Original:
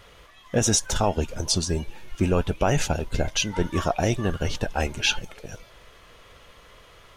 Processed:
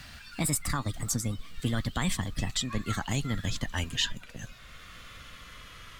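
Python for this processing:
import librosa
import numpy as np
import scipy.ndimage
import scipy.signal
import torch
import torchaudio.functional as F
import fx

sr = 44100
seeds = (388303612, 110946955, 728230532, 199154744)

y = fx.speed_glide(x, sr, from_pct=140, to_pct=99)
y = fx.band_shelf(y, sr, hz=570.0, db=-11.0, octaves=1.7)
y = fx.band_squash(y, sr, depth_pct=40)
y = y * librosa.db_to_amplitude(-4.5)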